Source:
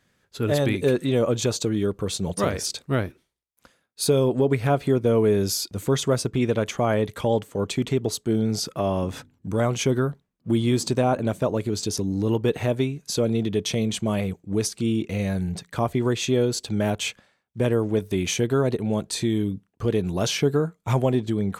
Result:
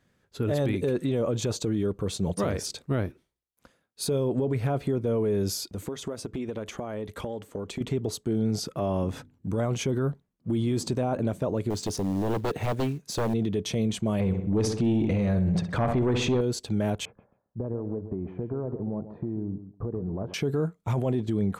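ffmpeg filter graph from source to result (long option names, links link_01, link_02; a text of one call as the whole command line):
ffmpeg -i in.wav -filter_complex "[0:a]asettb=1/sr,asplit=3[link_01][link_02][link_03];[link_01]atrim=end=5.724[link_04];[link_02]atrim=start=5.72:end=7.81,asetpts=PTS-STARTPTS,afade=type=in:duration=0.004:curve=qsin,afade=type=out:start_time=2.086:duration=0.004:curve=qsin,equalizer=frequency=130:width=4.4:gain=-14.5,acompressor=threshold=-28dB:ratio=16:attack=3.2:release=140:knee=1:detection=peak[link_05];[link_03]atrim=start=7.806[link_06];[link_04][link_05]acrossfade=duration=0.004:curve1=hsin:curve2=qsin[link_07];[link_07][link_06]acrossfade=duration=0.004:curve1=qsin:curve2=hsin,asettb=1/sr,asplit=3[link_08][link_09][link_10];[link_08]atrim=end=11.704[link_11];[link_09]atrim=start=11.7:end=13.34,asetpts=PTS-STARTPTS,afade=type=in:duration=0.004:curve=qsin,afade=type=out:start_time=1.636:duration=0.004:curve=qsin,highpass=frequency=57:poles=1,aeval=exprs='0.0944*(abs(mod(val(0)/0.0944+3,4)-2)-1)':channel_layout=same,acrusher=bits=5:mode=log:mix=0:aa=0.000001[link_12];[link_10]atrim=start=13.336[link_13];[link_11][link_12]acrossfade=duration=0.004:curve1=hsin:curve2=qsin[link_14];[link_14][link_13]acrossfade=duration=0.004:curve1=qsin:curve2=hsin,asettb=1/sr,asplit=3[link_15][link_16][link_17];[link_15]atrim=end=14.204[link_18];[link_16]atrim=start=14.2:end=16.41,asetpts=PTS-STARTPTS,afade=type=in:duration=0.004:curve=qsin,afade=type=out:start_time=2.206:duration=0.004:curve=qsin,aemphasis=mode=reproduction:type=50fm,aeval=exprs='0.335*sin(PI/2*1.78*val(0)/0.335)':channel_layout=same,asplit=2[link_19][link_20];[link_20]adelay=64,lowpass=frequency=3500:poles=1,volume=-11dB,asplit=2[link_21][link_22];[link_22]adelay=64,lowpass=frequency=3500:poles=1,volume=0.54,asplit=2[link_23][link_24];[link_24]adelay=64,lowpass=frequency=3500:poles=1,volume=0.54,asplit=2[link_25][link_26];[link_26]adelay=64,lowpass=frequency=3500:poles=1,volume=0.54,asplit=2[link_27][link_28];[link_28]adelay=64,lowpass=frequency=3500:poles=1,volume=0.54,asplit=2[link_29][link_30];[link_30]adelay=64,lowpass=frequency=3500:poles=1,volume=0.54[link_31];[link_19][link_21][link_23][link_25][link_27][link_29][link_31]amix=inputs=7:normalize=0,atrim=end_sample=97461[link_32];[link_17]atrim=start=16.406[link_33];[link_18][link_32]acrossfade=duration=0.004:curve1=hsin:curve2=qsin[link_34];[link_34][link_33]acrossfade=duration=0.004:curve1=qsin:curve2=hsin,asettb=1/sr,asplit=3[link_35][link_36][link_37];[link_35]atrim=end=17.054[link_38];[link_36]atrim=start=17.05:end=20.34,asetpts=PTS-STARTPTS,afade=type=in:duration=0.004:curve=qsin,afade=type=out:start_time=3.286:duration=0.004:curve=qsin,lowpass=frequency=1100:width=0.5412,lowpass=frequency=1100:width=1.3066,acompressor=threshold=-27dB:ratio=10:attack=3.2:release=140:knee=1:detection=peak,aecho=1:1:135|270:0.282|0.0507,atrim=end_sample=145089[link_39];[link_37]atrim=start=20.336[link_40];[link_38][link_39]acrossfade=duration=0.004:curve1=hsin:curve2=qsin[link_41];[link_41][link_40]acrossfade=duration=0.004:curve1=qsin:curve2=hsin,tiltshelf=frequency=1100:gain=3.5,alimiter=limit=-15.5dB:level=0:latency=1:release=17,volume=-3dB" out.wav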